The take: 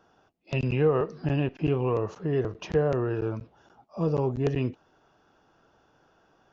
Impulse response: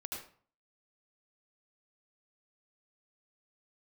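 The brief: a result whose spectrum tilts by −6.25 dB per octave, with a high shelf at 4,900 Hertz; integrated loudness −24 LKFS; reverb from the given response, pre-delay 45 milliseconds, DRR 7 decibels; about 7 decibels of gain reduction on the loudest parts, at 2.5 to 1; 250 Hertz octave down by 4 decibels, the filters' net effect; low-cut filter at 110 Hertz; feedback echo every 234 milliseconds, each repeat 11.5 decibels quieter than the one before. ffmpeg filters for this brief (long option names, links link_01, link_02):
-filter_complex "[0:a]highpass=110,equalizer=frequency=250:width_type=o:gain=-5.5,highshelf=frequency=4900:gain=-7.5,acompressor=threshold=-30dB:ratio=2.5,aecho=1:1:234|468|702:0.266|0.0718|0.0194,asplit=2[link_01][link_02];[1:a]atrim=start_sample=2205,adelay=45[link_03];[link_02][link_03]afir=irnorm=-1:irlink=0,volume=-6.5dB[link_04];[link_01][link_04]amix=inputs=2:normalize=0,volume=9.5dB"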